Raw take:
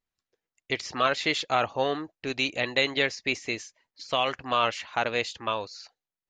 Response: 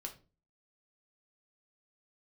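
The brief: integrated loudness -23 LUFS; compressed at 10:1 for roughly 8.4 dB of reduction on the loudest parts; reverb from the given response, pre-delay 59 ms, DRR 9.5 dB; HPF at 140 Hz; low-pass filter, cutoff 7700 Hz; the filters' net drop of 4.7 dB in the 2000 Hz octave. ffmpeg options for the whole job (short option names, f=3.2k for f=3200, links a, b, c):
-filter_complex "[0:a]highpass=140,lowpass=7.7k,equalizer=f=2k:t=o:g=-6,acompressor=threshold=-29dB:ratio=10,asplit=2[a][b];[1:a]atrim=start_sample=2205,adelay=59[c];[b][c]afir=irnorm=-1:irlink=0,volume=-7dB[d];[a][d]amix=inputs=2:normalize=0,volume=12dB"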